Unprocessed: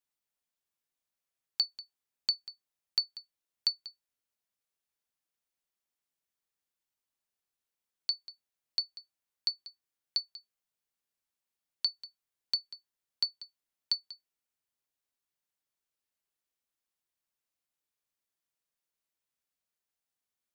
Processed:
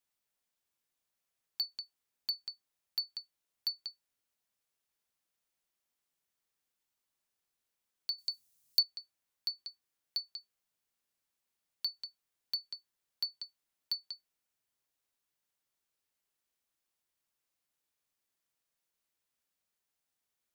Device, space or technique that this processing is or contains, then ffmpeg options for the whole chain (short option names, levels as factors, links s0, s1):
clipper into limiter: -filter_complex "[0:a]asoftclip=type=hard:threshold=0.075,alimiter=level_in=2:limit=0.0631:level=0:latency=1:release=108,volume=0.501,asettb=1/sr,asplit=3[s0][s1][s2];[s0]atrim=end=8.184[s3];[s1]atrim=start=8.18:end=8.83,asetpts=PTS-STARTPTS,afade=t=in:d=0.004:c=qsin,afade=t=out:st=0.646:d=0.004:c=qsin,bass=f=250:g=10,treble=f=4000:g=15[s4];[s2]atrim=start=8.826[s5];[s3][s4]acrossfade=d=0.004:c1=hsin:c2=qsin[s6];[s6][s5]acrossfade=d=0.004:c1=qsin:c2=hsin,volume=1.41"